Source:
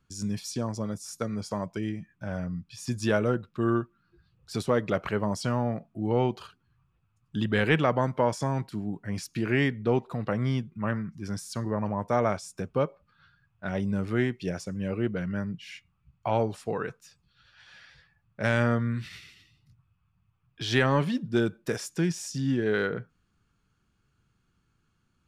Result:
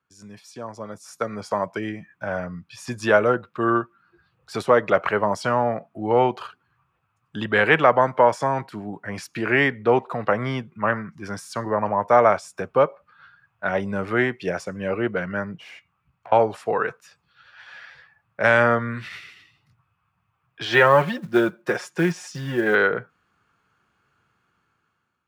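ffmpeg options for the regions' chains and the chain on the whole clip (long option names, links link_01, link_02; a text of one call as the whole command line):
ffmpeg -i in.wav -filter_complex "[0:a]asettb=1/sr,asplit=3[link_01][link_02][link_03];[link_01]atrim=end=15.564[link_04];[link_02]atrim=start=15.56:end=16.32,asetpts=PTS-STARTPTS,afade=type=in:duration=0.004:curve=qsin,afade=type=out:start_time=0.756:duration=0.004:curve=qsin,acompressor=threshold=-43dB:ratio=12:attack=3.2:release=140:knee=1:detection=peak,aeval=exprs='(tanh(178*val(0)+0.45)-tanh(0.45))/178':channel_layout=same[link_05];[link_03]atrim=start=16.316[link_06];[link_04][link_05]acrossfade=duration=0.004:curve1=hsin:curve2=qsin[link_07];[link_07][link_06]acrossfade=duration=0.004:curve1=qsin:curve2=hsin,asettb=1/sr,asplit=3[link_08][link_09][link_10];[link_08]atrim=end=20.654[link_11];[link_09]atrim=start=20.65:end=22.75,asetpts=PTS-STARTPTS,afade=type=in:duration=0.004:curve=qsin,afade=type=out:start_time=2.096:duration=0.004:curve=qsin,highshelf=frequency=6200:gain=-9,aecho=1:1:5.6:0.66,atrim=end_sample=92610,acrusher=bits=7:mode=log:mix=0:aa=0.000001[link_12];[link_10]atrim=start=22.746[link_13];[link_11][link_12]acrossfade=duration=0.004:curve1=hsin:curve2=qsin[link_14];[link_14][link_13]acrossfade=duration=0.004:curve1=qsin:curve2=hsin,highpass=81,acrossover=split=470 2400:gain=0.2 1 0.251[link_15][link_16][link_17];[link_15][link_16][link_17]amix=inputs=3:normalize=0,dynaudnorm=framelen=440:gausssize=5:maxgain=13dB" out.wav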